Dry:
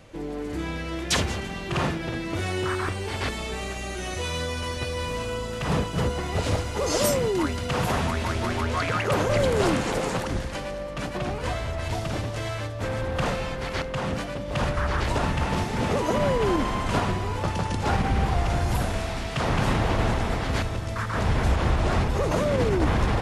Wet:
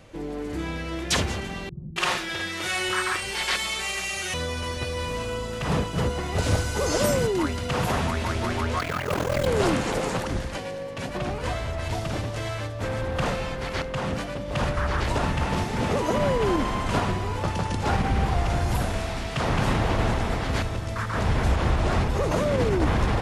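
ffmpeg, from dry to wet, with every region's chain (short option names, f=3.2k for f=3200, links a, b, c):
-filter_complex "[0:a]asettb=1/sr,asplit=3[a][b][c];[a]atrim=end=1.694[d];[b]atrim=start=1.69:end=4.34,asetpts=PTS-STARTPTS,afade=t=in:d=0.004:c=qsin,afade=t=out:st=2.646:d=0.004:c=qsin,tiltshelf=f=890:g=-8.5,aecho=1:1:5.5:0.43,atrim=end_sample=116865,acrossover=split=220[e][f];[f]adelay=270[g];[e][g]amix=inputs=2:normalize=0,atrim=end_sample=116865[h];[c]atrim=start=4.336[i];[d][h]acrossfade=d=0.004:c1=hsin:c2=qsin[j];[j][i]acrossfade=d=0.004:c1=qsin:c2=hsin,asettb=1/sr,asplit=3[k][l][m];[k]atrim=end=6.384[n];[l]atrim=start=6.38:end=7.27,asetpts=PTS-STARTPTS,afade=t=in:d=0.004:c=qsin,afade=t=out:st=0.886:d=0.004:c=qsin,acrossover=split=3100[o][p];[p]acompressor=threshold=-39dB:ratio=4:attack=1:release=60[q];[o][q]amix=inputs=2:normalize=0,bass=f=250:g=3,treble=f=4k:g=9,aeval=exprs='val(0)+0.0141*sin(2*PI*1500*n/s)':c=same[r];[m]atrim=start=7.266[s];[n][r]acrossfade=d=0.004:c1=hsin:c2=qsin[t];[t][s]acrossfade=d=0.004:c1=qsin:c2=hsin,asettb=1/sr,asplit=3[u][v][w];[u]atrim=end=8.794[x];[v]atrim=start=8.79:end=9.47,asetpts=PTS-STARTPTS,afade=t=in:d=0.004:c=qsin,afade=t=out:st=0.676:d=0.004:c=qsin,acrusher=bits=5:mode=log:mix=0:aa=0.000001,aeval=exprs='val(0)*sin(2*PI*21*n/s)':c=same[y];[w]atrim=start=9.466[z];[x][y]acrossfade=d=0.004:c1=hsin:c2=qsin[aa];[aa][z]acrossfade=d=0.004:c1=qsin:c2=hsin,asettb=1/sr,asplit=3[ab][ac][ad];[ab]atrim=end=10.584[ae];[ac]atrim=start=10.58:end=11.09,asetpts=PTS-STARTPTS,afade=t=in:d=0.004:c=qsin,afade=t=out:st=0.506:d=0.004:c=qsin,highpass=120,equalizer=f=1.3k:w=7.4:g=-10.5,afreqshift=-36[af];[ad]atrim=start=11.086[ag];[ae][af]acrossfade=d=0.004:c1=hsin:c2=qsin[ah];[ah][ag]acrossfade=d=0.004:c1=qsin:c2=hsin"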